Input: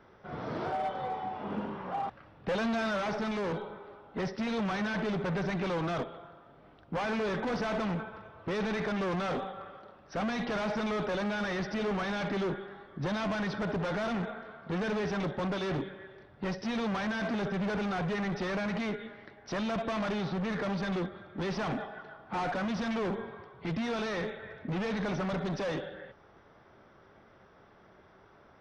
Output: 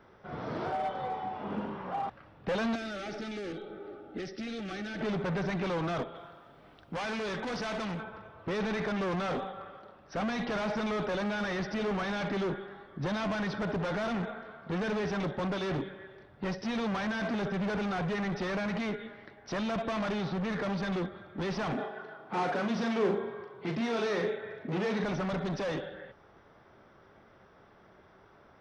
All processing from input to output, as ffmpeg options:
-filter_complex "[0:a]asettb=1/sr,asplit=3[a][b][c];[a]atrim=end=2.754[d];[b]atrim=start=2.75:end=5.01,asetpts=PTS-STARTPTS,afade=t=in:d=0.004:c=qsin,afade=t=out:st=2.256:d=0.004:c=qsin,asuperstop=centerf=1000:order=20:qfactor=4.2,equalizer=f=320:w=2:g=14,acrossover=split=81|1900[e][f][g];[e]acompressor=threshold=-56dB:ratio=4[h];[f]acompressor=threshold=-39dB:ratio=4[i];[g]acompressor=threshold=-44dB:ratio=4[j];[h][i][j]amix=inputs=3:normalize=0[k];[c]atrim=start=5.006[l];[d][k]acrossfade=d=0.004:c1=hsin:c2=qsin[m];[m][l]acrossfade=d=0.004:c1=qsin:c2=hsin,asettb=1/sr,asplit=3[n][o][p];[n]atrim=end=6.154[q];[o]atrim=start=6.15:end=8.04,asetpts=PTS-STARTPTS,afade=t=in:d=0.004:c=qsin,afade=t=out:st=1.886:d=0.004:c=qsin,highshelf=f=2.3k:g=9,acompressor=threshold=-40dB:ratio=1.5:attack=3.2:release=140:knee=1:detection=peak[r];[p]atrim=start=8.036[s];[q][r]acrossfade=d=0.004:c1=hsin:c2=qsin[t];[t][s]acrossfade=d=0.004:c1=qsin:c2=hsin,asettb=1/sr,asplit=3[u][v][w];[u]atrim=end=21.744[x];[v]atrim=start=21.74:end=25.04,asetpts=PTS-STARTPTS,afade=t=in:d=0.004:c=qsin,afade=t=out:st=3.296:d=0.004:c=qsin,highpass=140,equalizer=f=400:t=o:w=0.3:g=8,asplit=2[y][z];[z]adelay=39,volume=-6.5dB[aa];[y][aa]amix=inputs=2:normalize=0,atrim=end_sample=145530[ab];[w]atrim=start=25.036[ac];[x][ab]acrossfade=d=0.004:c1=hsin:c2=qsin[ad];[ad][ac]acrossfade=d=0.004:c1=qsin:c2=hsin"

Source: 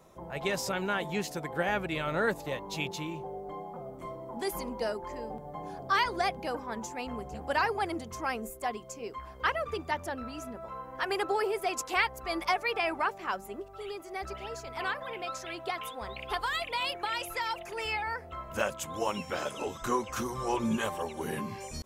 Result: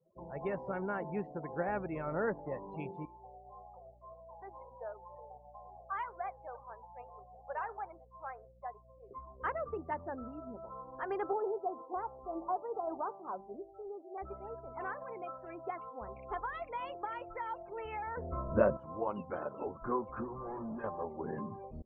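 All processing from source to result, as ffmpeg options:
-filter_complex "[0:a]asettb=1/sr,asplit=3[a][b][c];[a]atrim=end=3.054[d];[b]atrim=start=3.05:end=9.11,asetpts=PTS-STARTPTS,afade=t=in:d=0.004:c=qsin,afade=t=out:st=6.056:d=0.004:c=qsin,highpass=f=550:w=0.5412,highpass=f=550:w=1.3066,aeval=exprs='val(0)+0.00316*(sin(2*PI*60*n/s)+sin(2*PI*2*60*n/s)/2+sin(2*PI*3*60*n/s)/3+sin(2*PI*4*60*n/s)/4+sin(2*PI*5*60*n/s)/5)':c=same,flanger=delay=4.4:depth=5.4:regen=85:speed=1.6:shape=sinusoidal[e];[c]atrim=start=9.106[f];[d][e]acrossfade=d=0.004:c1=hsin:c2=qsin[g];[g][f]acrossfade=d=0.004:c1=qsin:c2=hsin,asettb=1/sr,asplit=3[h][i][j];[h]atrim=end=11.334[k];[i]atrim=start=11.33:end=14.18,asetpts=PTS-STARTPTS,afade=t=in:d=0.004:c=qsin,afade=t=out:st=2.846:d=0.004:c=qsin,lowpass=f=1.1k:w=0.5412,lowpass=f=1.1k:w=1.3066,lowshelf=f=150:g=-6.5,bandreject=f=168.2:t=h:w=4,bandreject=f=336.4:t=h:w=4,bandreject=f=504.6:t=h:w=4,bandreject=f=672.8:t=h:w=4,bandreject=f=841:t=h:w=4,bandreject=f=1.0092k:t=h:w=4,bandreject=f=1.1774k:t=h:w=4,bandreject=f=1.3456k:t=h:w=4,bandreject=f=1.5138k:t=h:w=4,bandreject=f=1.682k:t=h:w=4,bandreject=f=1.8502k:t=h:w=4,bandreject=f=2.0184k:t=h:w=4,bandreject=f=2.1866k:t=h:w=4,bandreject=f=2.3548k:t=h:w=4,bandreject=f=2.523k:t=h:w=4,bandreject=f=2.6912k:t=h:w=4,bandreject=f=2.8594k:t=h:w=4,bandreject=f=3.0276k:t=h:w=4,bandreject=f=3.1958k:t=h:w=4,bandreject=f=3.364k:t=h:w=4,bandreject=f=3.5322k:t=h:w=4,bandreject=f=3.7004k:t=h:w=4,bandreject=f=3.8686k:t=h:w=4,bandreject=f=4.0368k:t=h:w=4,bandreject=f=4.205k:t=h:w=4,bandreject=f=4.3732k:t=h:w=4,bandreject=f=4.5414k:t=h:w=4,bandreject=f=4.7096k:t=h:w=4,bandreject=f=4.8778k:t=h:w=4,bandreject=f=5.046k:t=h:w=4,bandreject=f=5.2142k:t=h:w=4,bandreject=f=5.3824k:t=h:w=4[l];[j]atrim=start=14.176[m];[k][l]acrossfade=d=0.004:c1=hsin:c2=qsin[n];[n][m]acrossfade=d=0.004:c1=qsin:c2=hsin,asettb=1/sr,asplit=3[o][p][q];[o]atrim=end=18.174[r];[p]atrim=start=18.17:end=18.77,asetpts=PTS-STARTPTS,afade=t=in:d=0.004:c=qsin,afade=t=out:st=0.596:d=0.004:c=qsin,tiltshelf=f=940:g=7,acontrast=54,asuperstop=centerf=800:order=4:qfactor=5.5[s];[q]atrim=start=18.766[t];[r][s]acrossfade=d=0.004:c1=hsin:c2=qsin[u];[u][t]acrossfade=d=0.004:c1=qsin:c2=hsin,asettb=1/sr,asplit=3[v][w][x];[v]atrim=end=20.244[y];[w]atrim=start=20.24:end=20.84,asetpts=PTS-STARTPTS,afade=t=in:d=0.004:c=qsin,afade=t=out:st=0.596:d=0.004:c=qsin,asplit=2[z][aa];[aa]adelay=34,volume=-14dB[ab];[z][ab]amix=inputs=2:normalize=0,atrim=end_sample=26460,asoftclip=type=hard:threshold=-35dB[ac];[x]atrim=start=20.836[ad];[y][ac]acrossfade=d=0.004:c1=hsin:c2=qsin[ae];[ae][ad]acrossfade=d=0.004:c1=qsin:c2=hsin,lowpass=1.2k,afftdn=nr=29:nf=-47,equalizer=f=80:t=o:w=1.8:g=-2.5,volume=-3.5dB"

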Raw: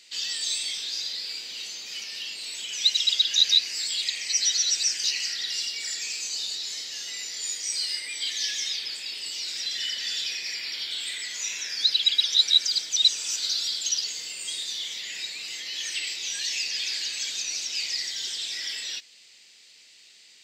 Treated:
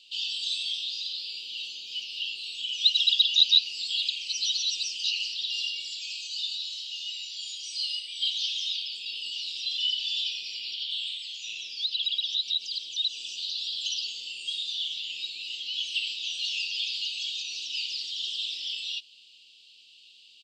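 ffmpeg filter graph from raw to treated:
-filter_complex "[0:a]asettb=1/sr,asplit=3[a][b][c];[a]atrim=end=5.894[d];[b]atrim=start=5.89:end=8.94,asetpts=PTS-STARTPTS,afade=t=in:d=0.004:c=qsin,afade=t=out:st=3.046:d=0.004:c=qsin,highpass=f=850:p=1,aecho=1:1:3.1:0.44,atrim=end_sample=134505[e];[c]atrim=start=8.936[f];[d][e]acrossfade=d=0.004:c1=hsin:c2=qsin[g];[g][f]acrossfade=d=0.004:c1=qsin:c2=hsin,asettb=1/sr,asplit=3[h][i][j];[h]atrim=end=10.744[k];[i]atrim=start=10.74:end=13.79,asetpts=PTS-STARTPTS,afade=t=in:d=0.004:c=qsin,afade=t=out:st=3.046:d=0.004:c=qsin,acrossover=split=1300[l][m];[l]adelay=720[n];[n][m]amix=inputs=2:normalize=0,atrim=end_sample=134505,acompressor=threshold=-25dB:ratio=2.5:attack=3.2:release=140:knee=1:detection=peak,highshelf=f=5.2k:g=-4.5[o];[j]atrim=start=13.786[p];[k][o]acrossfade=d=0.004:c1=hsin:c2=qsin[q];[q][p]acrossfade=d=0.004:c1=qsin:c2=hsin,acrossover=split=9700[r][s];[s]acompressor=threshold=-58dB:ratio=4:attack=1:release=60[t];[r][t]amix=inputs=2:normalize=0,firequalizer=gain_entry='entry(380,0);entry(1800,-28);entry(2800,15);entry(6200,-4)':delay=0.05:min_phase=1,volume=-9dB"

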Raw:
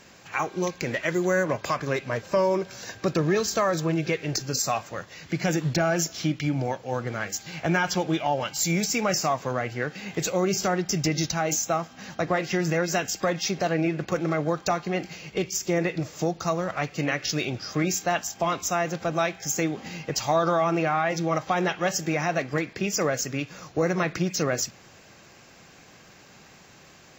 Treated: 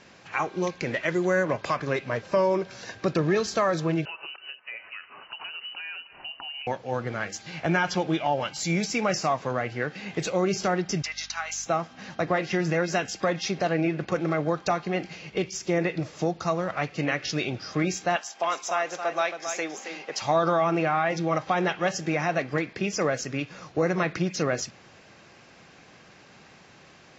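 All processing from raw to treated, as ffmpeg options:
-filter_complex "[0:a]asettb=1/sr,asplit=3[a][b][c];[a]atrim=end=4.054[d];[b]atrim=start=4.05:end=6.67,asetpts=PTS-STARTPTS,afade=t=in:d=0.004:c=qsin,afade=t=out:st=2.616:d=0.004:c=qsin,highpass=170,acompressor=threshold=-34dB:ratio=6:attack=3.2:release=140:knee=1:detection=peak,lowpass=f=2.6k:t=q:w=0.5098,lowpass=f=2.6k:t=q:w=0.6013,lowpass=f=2.6k:t=q:w=0.9,lowpass=f=2.6k:t=q:w=2.563,afreqshift=-3100[e];[c]atrim=start=6.666[f];[d][e]acrossfade=d=0.004:c1=hsin:c2=qsin[g];[g][f]acrossfade=d=0.004:c1=qsin:c2=hsin,asettb=1/sr,asplit=3[h][i][j];[h]atrim=end=11.024[k];[i]atrim=start=11.02:end=11.66,asetpts=PTS-STARTPTS,afade=t=in:d=0.004:c=qsin,afade=t=out:st=0.636:d=0.004:c=qsin,highpass=f=1k:w=0.5412,highpass=f=1k:w=1.3066,aeval=exprs='val(0)+0.00251*(sin(2*PI*50*n/s)+sin(2*PI*2*50*n/s)/2+sin(2*PI*3*50*n/s)/3+sin(2*PI*4*50*n/s)/4+sin(2*PI*5*50*n/s)/5)':c=same[l];[j]atrim=start=11.656[m];[k][l]acrossfade=d=0.004:c1=hsin:c2=qsin[n];[n][m]acrossfade=d=0.004:c1=qsin:c2=hsin,asettb=1/sr,asplit=3[o][p][q];[o]atrim=end=18.164[r];[p]atrim=start=18.16:end=20.22,asetpts=PTS-STARTPTS,afade=t=in:d=0.004:c=qsin,afade=t=out:st=2.056:d=0.004:c=qsin,highpass=510,aecho=1:1:272:0.398,atrim=end_sample=90846[s];[q]atrim=start=20.216[t];[r][s]acrossfade=d=0.004:c1=hsin:c2=qsin[u];[u][t]acrossfade=d=0.004:c1=qsin:c2=hsin,lowpass=4.9k,lowshelf=f=71:g=-6"

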